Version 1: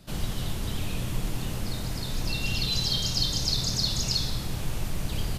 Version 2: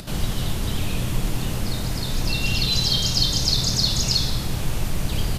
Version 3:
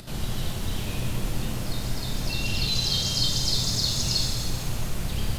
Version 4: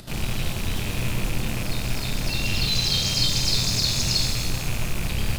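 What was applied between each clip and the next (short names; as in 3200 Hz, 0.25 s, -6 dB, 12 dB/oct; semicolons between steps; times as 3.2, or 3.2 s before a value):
upward compressor, threshold -36 dBFS; gain +6 dB
shimmer reverb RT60 1.6 s, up +7 st, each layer -8 dB, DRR 2 dB; gain -6.5 dB
rattling part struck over -32 dBFS, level -25 dBFS; in parallel at -10.5 dB: bit-crush 5-bit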